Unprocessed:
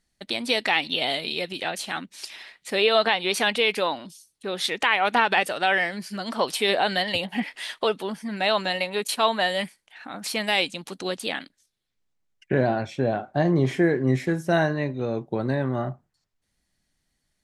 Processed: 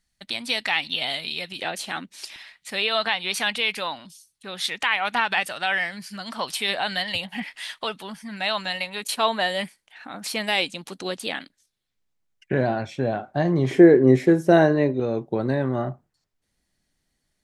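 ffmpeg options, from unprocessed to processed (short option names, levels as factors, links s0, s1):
-af "asetnsamples=n=441:p=0,asendcmd='1.58 equalizer g -0.5;2.36 equalizer g -11;9.03 equalizer g -1;13.71 equalizer g 10.5;15 equalizer g 3',equalizer=f=400:t=o:w=1.5:g=-10.5"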